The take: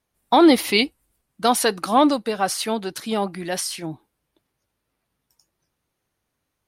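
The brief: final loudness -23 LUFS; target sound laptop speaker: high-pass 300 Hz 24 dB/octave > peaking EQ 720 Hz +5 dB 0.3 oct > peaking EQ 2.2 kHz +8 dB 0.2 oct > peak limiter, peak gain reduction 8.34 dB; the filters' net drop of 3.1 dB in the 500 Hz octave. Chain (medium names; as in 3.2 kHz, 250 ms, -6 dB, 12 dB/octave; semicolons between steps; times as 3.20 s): high-pass 300 Hz 24 dB/octave; peaking EQ 500 Hz -5.5 dB; peaking EQ 720 Hz +5 dB 0.3 oct; peaking EQ 2.2 kHz +8 dB 0.2 oct; trim +1.5 dB; peak limiter -10 dBFS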